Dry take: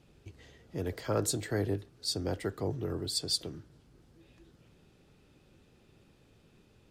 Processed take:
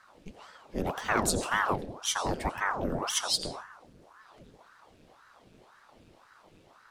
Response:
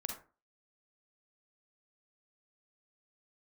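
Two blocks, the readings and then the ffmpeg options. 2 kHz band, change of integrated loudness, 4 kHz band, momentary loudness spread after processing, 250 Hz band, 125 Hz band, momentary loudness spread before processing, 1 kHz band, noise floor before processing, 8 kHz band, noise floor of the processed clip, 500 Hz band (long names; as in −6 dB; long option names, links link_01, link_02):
+13.5 dB, +3.5 dB, +2.5 dB, 11 LU, +1.0 dB, −3.5 dB, 12 LU, +14.0 dB, −64 dBFS, +5.0 dB, −60 dBFS, +0.5 dB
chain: -filter_complex "[0:a]asoftclip=type=tanh:threshold=-18dB,asplit=2[link_01][link_02];[1:a]atrim=start_sample=2205,asetrate=22050,aresample=44100[link_03];[link_02][link_03]afir=irnorm=-1:irlink=0,volume=-8dB[link_04];[link_01][link_04]amix=inputs=2:normalize=0,aeval=exprs='val(0)*sin(2*PI*750*n/s+750*0.9/1.9*sin(2*PI*1.9*n/s))':channel_layout=same,volume=3dB"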